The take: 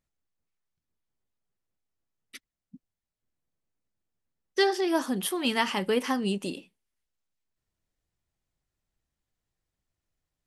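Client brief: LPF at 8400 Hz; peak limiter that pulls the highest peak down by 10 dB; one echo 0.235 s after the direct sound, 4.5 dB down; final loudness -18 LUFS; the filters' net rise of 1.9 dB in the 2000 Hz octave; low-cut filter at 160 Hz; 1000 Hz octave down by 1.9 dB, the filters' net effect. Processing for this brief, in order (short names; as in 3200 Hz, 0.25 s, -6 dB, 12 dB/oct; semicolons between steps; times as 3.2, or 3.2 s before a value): HPF 160 Hz; LPF 8400 Hz; bell 1000 Hz -3 dB; bell 2000 Hz +3 dB; limiter -19 dBFS; echo 0.235 s -4.5 dB; gain +11 dB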